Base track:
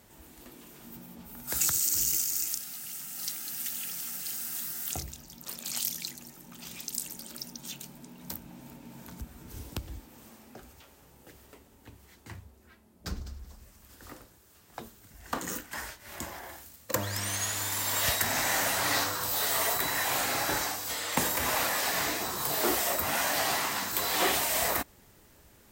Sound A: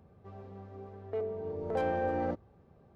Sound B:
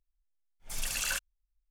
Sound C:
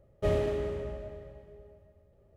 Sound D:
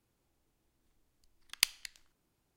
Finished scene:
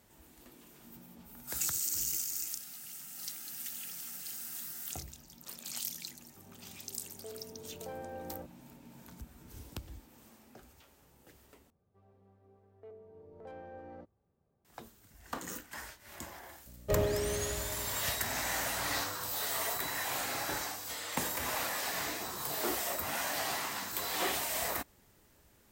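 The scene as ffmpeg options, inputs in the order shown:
-filter_complex "[1:a]asplit=2[s0][s1];[0:a]volume=0.473[s2];[3:a]aeval=exprs='val(0)+0.00355*(sin(2*PI*60*n/s)+sin(2*PI*2*60*n/s)/2+sin(2*PI*3*60*n/s)/3+sin(2*PI*4*60*n/s)/4+sin(2*PI*5*60*n/s)/5)':c=same[s3];[s2]asplit=2[s4][s5];[s4]atrim=end=11.704[s6];[s1]atrim=end=2.95,asetpts=PTS-STARTPTS,volume=0.141[s7];[s5]atrim=start=14.646[s8];[s0]atrim=end=2.95,asetpts=PTS-STARTPTS,volume=0.237,afade=t=in:d=0.004:c=hsin,afade=t=out:st=2.946:d=0.004:c=hsin,adelay=6110[s9];[s3]atrim=end=2.36,asetpts=PTS-STARTPTS,volume=0.75,afade=t=in:d=0.004:c=hsin,afade=t=out:st=2.356:d=0.004:c=hsin,adelay=16660[s10];[s6][s7]acrossfade=d=0.004:c1=hsin:c2=hsin[s11];[s11][s8]acrossfade=d=0.004:c1=hsin:c2=hsin[s12];[s12][s9][s10]amix=inputs=3:normalize=0"

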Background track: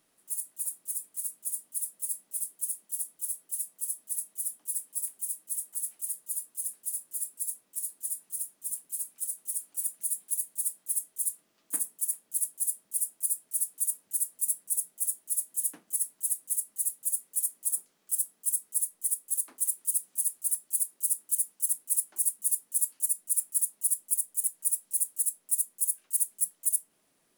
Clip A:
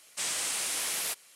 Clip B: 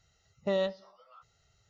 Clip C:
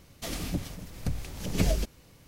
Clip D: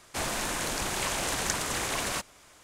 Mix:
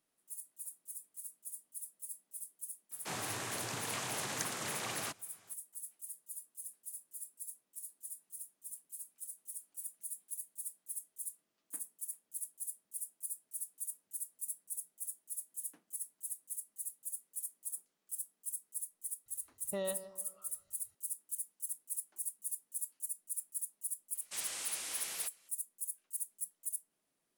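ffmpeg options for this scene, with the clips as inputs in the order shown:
-filter_complex "[0:a]volume=0.237[s0];[4:a]afreqshift=89[s1];[2:a]asplit=2[s2][s3];[s3]adelay=153,lowpass=f=1300:p=1,volume=0.251,asplit=2[s4][s5];[s5]adelay=153,lowpass=f=1300:p=1,volume=0.45,asplit=2[s6][s7];[s7]adelay=153,lowpass=f=1300:p=1,volume=0.45,asplit=2[s8][s9];[s9]adelay=153,lowpass=f=1300:p=1,volume=0.45,asplit=2[s10][s11];[s11]adelay=153,lowpass=f=1300:p=1,volume=0.45[s12];[s2][s4][s6][s8][s10][s12]amix=inputs=6:normalize=0[s13];[s1]atrim=end=2.63,asetpts=PTS-STARTPTS,volume=0.355,afade=t=in:d=0.004:c=hsin,afade=t=out:st=2.626:d=0.004:c=hsin,adelay=2910[s14];[s13]atrim=end=1.69,asetpts=PTS-STARTPTS,volume=0.355,afade=t=in:d=0.004:c=hsin,afade=t=out:st=1.686:d=0.004:c=hsin,adelay=19260[s15];[1:a]atrim=end=1.35,asetpts=PTS-STARTPTS,volume=0.316,afade=t=in:d=0.004:c=hsin,afade=t=out:st=1.346:d=0.004:c=hsin,adelay=24140[s16];[s0][s14][s15][s16]amix=inputs=4:normalize=0"

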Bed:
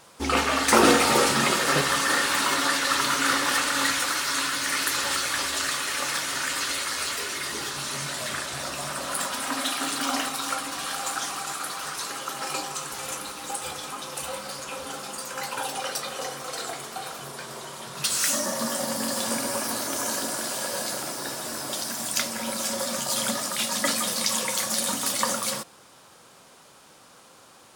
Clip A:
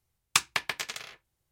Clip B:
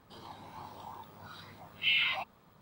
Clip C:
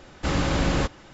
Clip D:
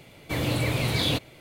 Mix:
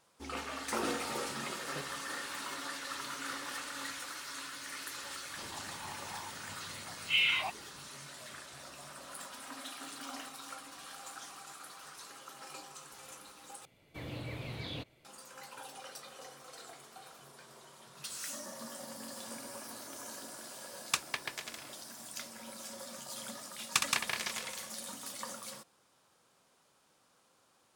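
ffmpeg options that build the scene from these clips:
-filter_complex "[1:a]asplit=2[s0][s1];[0:a]volume=0.133[s2];[4:a]acrossover=split=4900[s3][s4];[s4]acompressor=threshold=0.00447:ratio=4:attack=1:release=60[s5];[s3][s5]amix=inputs=2:normalize=0[s6];[s1]aecho=1:1:64.14|172:0.501|0.708[s7];[s2]asplit=2[s8][s9];[s8]atrim=end=13.654[s10];[s6]atrim=end=1.4,asetpts=PTS-STARTPTS,volume=0.158[s11];[s9]atrim=start=15.046[s12];[2:a]atrim=end=2.61,asetpts=PTS-STARTPTS,afade=t=in:d=0.004:c=hsin,afade=t=out:st=2.606:d=0.004:c=hsin,adelay=5270[s13];[s0]atrim=end=1.51,asetpts=PTS-STARTPTS,volume=0.398,afade=t=in:d=0.004:c=hsin,afade=t=out:st=1.506:d=0.004:c=hsin,adelay=20580[s14];[s7]atrim=end=1.51,asetpts=PTS-STARTPTS,volume=0.501,afade=t=in:d=0.004:c=hsin,afade=t=out:st=1.506:d=0.004:c=hsin,adelay=1031940S[s15];[s10][s11]acrossfade=d=0.004:c1=hsin:c2=hsin[s16];[s16][s12]acrossfade=d=0.004:c1=hsin:c2=hsin[s17];[s17][s13][s14][s15]amix=inputs=4:normalize=0"

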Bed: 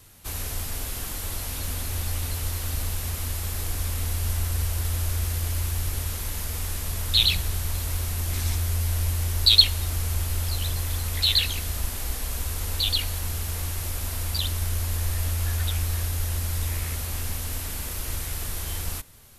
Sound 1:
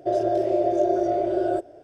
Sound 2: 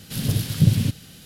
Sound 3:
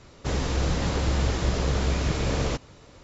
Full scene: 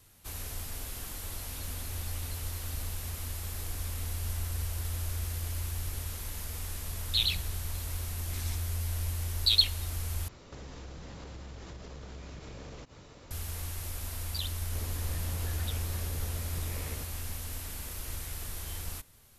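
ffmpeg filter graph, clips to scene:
-filter_complex "[3:a]asplit=2[s0][s1];[0:a]volume=0.398[s2];[s0]acompressor=threshold=0.00891:ratio=6:attack=3.2:release=140:knee=1:detection=peak[s3];[s2]asplit=2[s4][s5];[s4]atrim=end=10.284[s6];[s3]atrim=end=3.03,asetpts=PTS-STARTPTS,volume=0.794[s7];[s5]atrim=start=13.306[s8];[s1]atrim=end=3.03,asetpts=PTS-STARTPTS,volume=0.126,afade=t=in:d=0.004:c=hsin,afade=t=out:st=3.026:d=0.004:c=hsin,adelay=14470[s9];[s6][s7]acrossfade=d=0.004:c1=hsin:c2=hsin[s10];[s10][s8]acrossfade=d=0.004:c1=hsin:c2=hsin[s11];[s11][s9]amix=inputs=2:normalize=0"

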